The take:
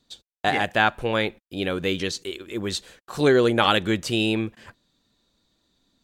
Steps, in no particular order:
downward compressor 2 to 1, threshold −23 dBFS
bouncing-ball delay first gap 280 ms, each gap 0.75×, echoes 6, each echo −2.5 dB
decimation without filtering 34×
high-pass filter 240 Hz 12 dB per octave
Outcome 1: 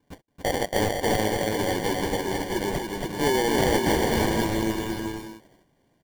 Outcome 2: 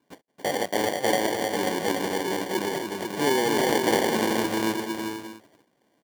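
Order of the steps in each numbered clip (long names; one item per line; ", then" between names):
high-pass filter, then decimation without filtering, then downward compressor, then bouncing-ball delay
downward compressor, then bouncing-ball delay, then decimation without filtering, then high-pass filter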